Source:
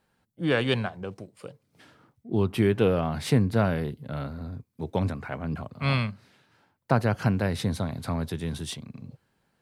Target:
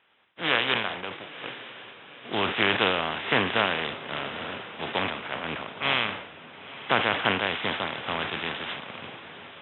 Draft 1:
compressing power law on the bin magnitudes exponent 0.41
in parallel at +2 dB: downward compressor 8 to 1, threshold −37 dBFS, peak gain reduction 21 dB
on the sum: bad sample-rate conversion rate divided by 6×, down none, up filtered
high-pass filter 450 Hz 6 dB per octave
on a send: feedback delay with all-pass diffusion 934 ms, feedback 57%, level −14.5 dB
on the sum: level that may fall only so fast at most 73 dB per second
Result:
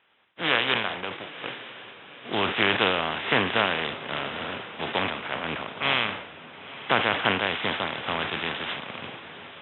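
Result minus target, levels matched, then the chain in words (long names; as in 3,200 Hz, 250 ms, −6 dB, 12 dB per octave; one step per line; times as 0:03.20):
downward compressor: peak gain reduction −9 dB
compressing power law on the bin magnitudes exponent 0.41
in parallel at +2 dB: downward compressor 8 to 1, threshold −47 dBFS, peak gain reduction 29.5 dB
on the sum: bad sample-rate conversion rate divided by 6×, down none, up filtered
high-pass filter 450 Hz 6 dB per octave
on a send: feedback delay with all-pass diffusion 934 ms, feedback 57%, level −14.5 dB
on the sum: level that may fall only so fast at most 73 dB per second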